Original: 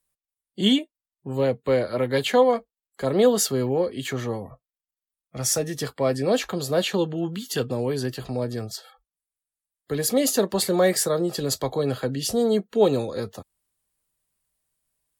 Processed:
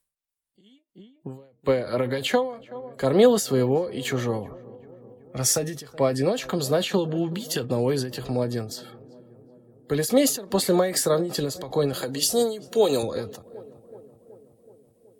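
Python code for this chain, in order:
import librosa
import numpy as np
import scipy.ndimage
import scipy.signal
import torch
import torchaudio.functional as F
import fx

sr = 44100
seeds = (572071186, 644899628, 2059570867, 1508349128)

p1 = fx.bass_treble(x, sr, bass_db=-10, treble_db=11, at=(11.93, 13.03))
p2 = p1 + fx.echo_filtered(p1, sr, ms=375, feedback_pct=69, hz=1300.0, wet_db=-21.0, dry=0)
p3 = fx.end_taper(p2, sr, db_per_s=110.0)
y = p3 * librosa.db_to_amplitude(2.5)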